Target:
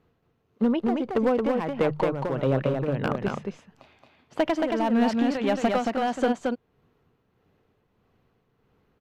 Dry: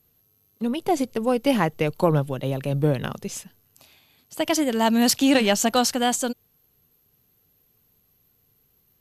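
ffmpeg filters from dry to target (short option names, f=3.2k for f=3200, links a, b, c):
-af "lowpass=1.7k,lowshelf=f=180:g=-7,bandreject=f=50:t=h:w=6,bandreject=f=100:t=h:w=6,bandreject=f=150:t=h:w=6,acompressor=threshold=-25dB:ratio=20,asoftclip=type=hard:threshold=-24dB,tremolo=f=1.6:d=0.62,aecho=1:1:224:0.668,volume=8.5dB"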